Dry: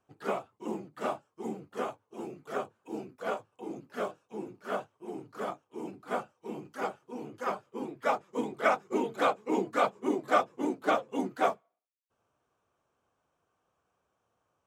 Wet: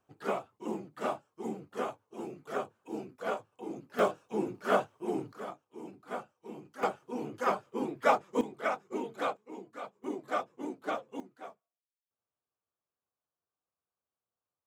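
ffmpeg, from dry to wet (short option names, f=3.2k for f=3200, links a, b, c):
-af "asetnsamples=n=441:p=0,asendcmd='3.99 volume volume 7dB;5.33 volume volume -5.5dB;6.83 volume volume 3.5dB;8.41 volume volume -6dB;9.37 volume volume -16dB;10.04 volume volume -7.5dB;11.2 volume volume -19.5dB',volume=-0.5dB"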